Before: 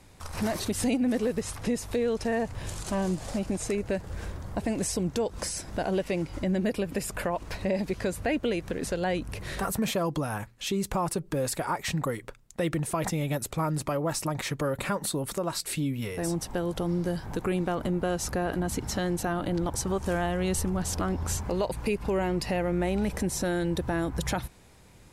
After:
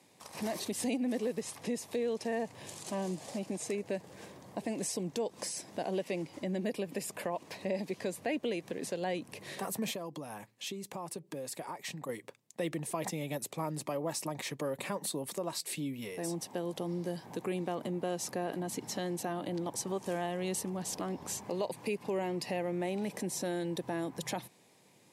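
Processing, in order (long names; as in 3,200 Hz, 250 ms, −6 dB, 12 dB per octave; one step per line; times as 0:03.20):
0:09.91–0:12.09: downward compressor, threshold −31 dBFS, peak gain reduction 7.5 dB
Bessel high-pass filter 210 Hz, order 8
parametric band 1,400 Hz −11 dB 0.36 octaves
level −5 dB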